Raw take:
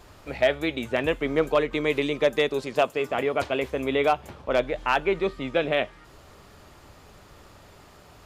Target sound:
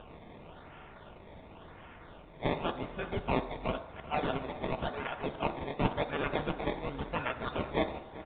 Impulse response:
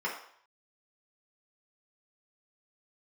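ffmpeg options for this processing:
-filter_complex "[0:a]areverse,equalizer=f=400:t=o:w=2:g=-11.5,acompressor=mode=upward:threshold=0.00631:ratio=2.5,aexciter=amount=4.2:drive=4.7:freq=2600,acrusher=samples=21:mix=1:aa=0.000001:lfo=1:lforange=21:lforate=0.93,asplit=2[s0][s1];[s1]adelay=384.8,volume=0.158,highshelf=f=4000:g=-8.66[s2];[s0][s2]amix=inputs=2:normalize=0,asplit=2[s3][s4];[1:a]atrim=start_sample=2205,asetrate=30870,aresample=44100,highshelf=f=3800:g=11.5[s5];[s4][s5]afir=irnorm=-1:irlink=0,volume=0.133[s6];[s3][s6]amix=inputs=2:normalize=0,aresample=8000,aresample=44100,volume=0.473"

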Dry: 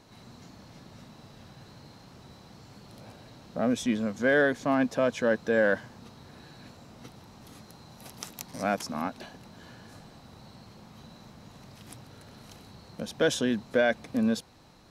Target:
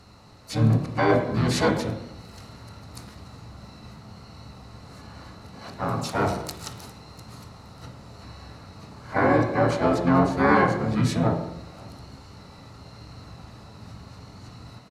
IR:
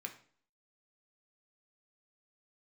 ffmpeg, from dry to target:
-filter_complex "[0:a]areverse,asplit=4[s0][s1][s2][s3];[s1]asetrate=22050,aresample=44100,atempo=2,volume=0.708[s4];[s2]asetrate=29433,aresample=44100,atempo=1.49831,volume=0.794[s5];[s3]asetrate=58866,aresample=44100,atempo=0.749154,volume=0.447[s6];[s0][s4][s5][s6]amix=inputs=4:normalize=0[s7];[1:a]atrim=start_sample=2205,asetrate=24255,aresample=44100[s8];[s7][s8]afir=irnorm=-1:irlink=0,volume=1.12"

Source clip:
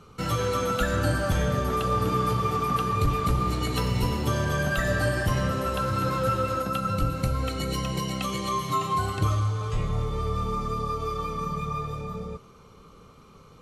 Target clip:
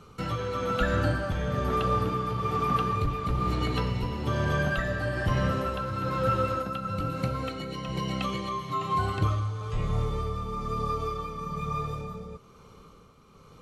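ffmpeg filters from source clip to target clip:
-filter_complex "[0:a]asettb=1/sr,asplit=3[s0][s1][s2];[s0]atrim=end=7.014[s3];[s1]atrim=start=7.01:end=7.89,asetpts=PTS-STARTPTS,afade=t=in:d=0.004:c=qsin,afade=t=out:st=0.876:d=0.004:c=qsin,highpass=120[s4];[s2]atrim=start=7.886[s5];[s3][s4]acrossfade=d=0.004:c1=hsin:c2=qsin[s6];[s6][s5]acrossfade=d=0.004:c1=qsin:c2=hsin,acrossover=split=4500[s7][s8];[s8]acompressor=threshold=0.00178:ratio=10[s9];[s7][s9]amix=inputs=2:normalize=0,tremolo=f=1.1:d=0.47"

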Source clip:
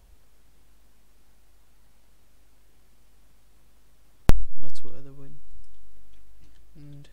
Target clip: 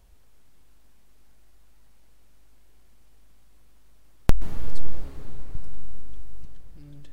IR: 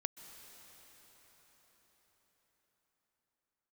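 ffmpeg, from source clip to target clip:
-filter_complex "[0:a]asettb=1/sr,asplit=3[s0][s1][s2];[s0]atrim=end=5.554[s3];[s1]atrim=start=5.55:end=6.45,asetpts=PTS-STARTPTS,afade=t=in:d=0.004:c=qsin,afade=t=out:st=0.896:d=0.004:c=qsin,bass=f=250:g=10,treble=f=4000:g=4[s4];[s2]atrim=start=6.446[s5];[s3][s4]acrossfade=d=0.004:c1=hsin:c2=qsin[s6];[s6][s5]acrossfade=d=0.004:c1=qsin:c2=hsin[s7];[1:a]atrim=start_sample=2205[s8];[s7][s8]afir=irnorm=-1:irlink=0"

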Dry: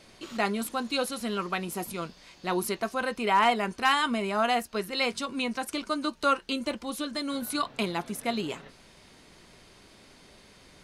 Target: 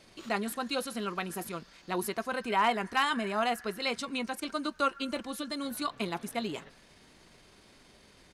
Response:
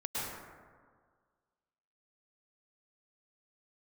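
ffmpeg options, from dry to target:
-filter_complex "[0:a]atempo=1.3,asplit=2[s0][s1];[s1]bandpass=f=1700:t=q:w=12:csg=0[s2];[1:a]atrim=start_sample=2205[s3];[s2][s3]afir=irnorm=-1:irlink=0,volume=0.299[s4];[s0][s4]amix=inputs=2:normalize=0,volume=0.668"

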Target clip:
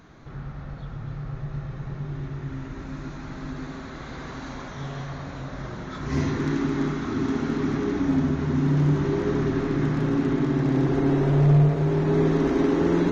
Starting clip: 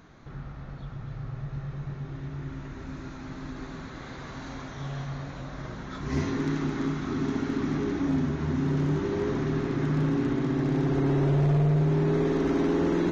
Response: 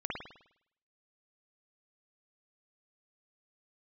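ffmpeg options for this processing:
-filter_complex "[0:a]asplit=2[s0][s1];[1:a]atrim=start_sample=2205,asetrate=27342,aresample=44100[s2];[s1][s2]afir=irnorm=-1:irlink=0,volume=0.316[s3];[s0][s3]amix=inputs=2:normalize=0"

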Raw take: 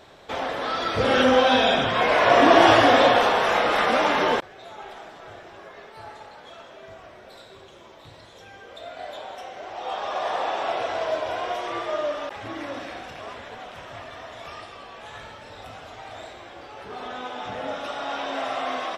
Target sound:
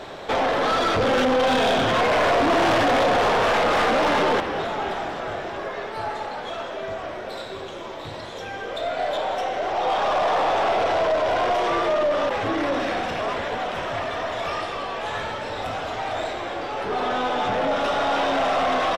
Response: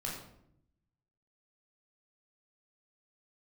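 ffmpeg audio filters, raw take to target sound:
-filter_complex "[0:a]aeval=exprs='if(lt(val(0),0),0.708*val(0),val(0))':c=same,tiltshelf=f=720:g=5.5,asplit=2[s0][s1];[s1]acompressor=threshold=0.0398:ratio=6,volume=1.26[s2];[s0][s2]amix=inputs=2:normalize=0,asplit=7[s3][s4][s5][s6][s7][s8][s9];[s4]adelay=269,afreqshift=-87,volume=0.168[s10];[s5]adelay=538,afreqshift=-174,volume=0.102[s11];[s6]adelay=807,afreqshift=-261,volume=0.0624[s12];[s7]adelay=1076,afreqshift=-348,volume=0.038[s13];[s8]adelay=1345,afreqshift=-435,volume=0.0232[s14];[s9]adelay=1614,afreqshift=-522,volume=0.0141[s15];[s3][s10][s11][s12][s13][s14][s15]amix=inputs=7:normalize=0,asoftclip=type=tanh:threshold=0.119,asplit=2[s16][s17];[s17]highpass=f=720:p=1,volume=3.98,asoftclip=type=tanh:threshold=0.119[s18];[s16][s18]amix=inputs=2:normalize=0,lowpass=f=7200:p=1,volume=0.501,volume=1.41"

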